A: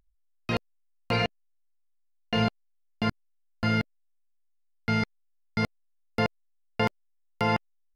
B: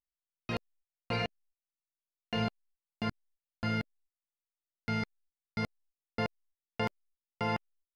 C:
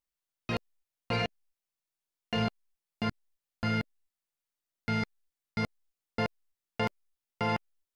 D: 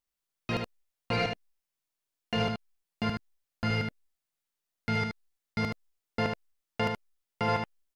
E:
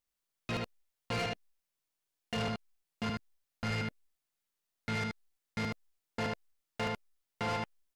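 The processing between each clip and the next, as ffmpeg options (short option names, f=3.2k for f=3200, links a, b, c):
-af "agate=range=-24dB:threshold=-57dB:ratio=16:detection=peak,volume=-7dB"
-af "asoftclip=type=tanh:threshold=-23dB,volume=3.5dB"
-af "aecho=1:1:75:0.562,volume=1dB"
-af "asoftclip=type=tanh:threshold=-30.5dB"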